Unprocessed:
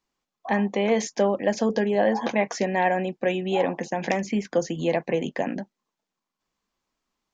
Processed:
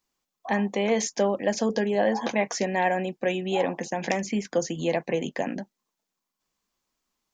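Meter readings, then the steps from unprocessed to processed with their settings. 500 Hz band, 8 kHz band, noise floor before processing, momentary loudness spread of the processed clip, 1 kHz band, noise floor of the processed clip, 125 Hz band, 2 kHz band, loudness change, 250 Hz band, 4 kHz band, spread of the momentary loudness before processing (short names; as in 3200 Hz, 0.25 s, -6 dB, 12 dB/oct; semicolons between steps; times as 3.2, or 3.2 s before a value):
-2.0 dB, n/a, under -85 dBFS, 7 LU, -2.0 dB, -84 dBFS, -2.0 dB, -1.0 dB, -1.5 dB, -2.0 dB, +1.0 dB, 7 LU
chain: high shelf 5900 Hz +10.5 dB; gain -2 dB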